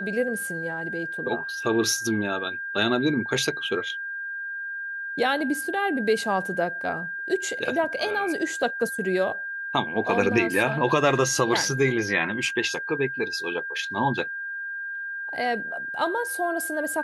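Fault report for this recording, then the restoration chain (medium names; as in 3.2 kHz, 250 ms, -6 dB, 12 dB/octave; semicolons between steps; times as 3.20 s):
whine 1.6 kHz -30 dBFS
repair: band-stop 1.6 kHz, Q 30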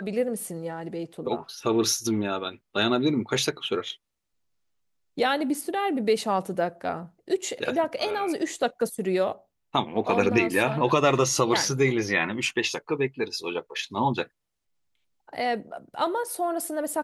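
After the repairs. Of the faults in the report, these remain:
nothing left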